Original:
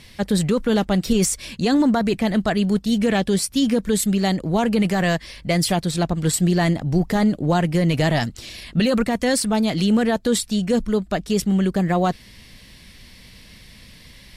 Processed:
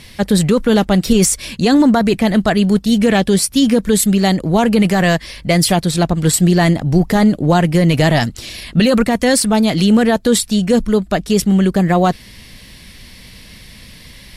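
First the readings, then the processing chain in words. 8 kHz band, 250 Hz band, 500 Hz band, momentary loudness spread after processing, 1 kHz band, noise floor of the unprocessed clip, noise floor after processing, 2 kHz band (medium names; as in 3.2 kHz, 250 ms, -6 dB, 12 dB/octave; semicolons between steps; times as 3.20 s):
+7.5 dB, +6.5 dB, +6.5 dB, 4 LU, +6.5 dB, -46 dBFS, -39 dBFS, +6.5 dB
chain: peaking EQ 11 kHz +4.5 dB 0.27 oct; trim +6.5 dB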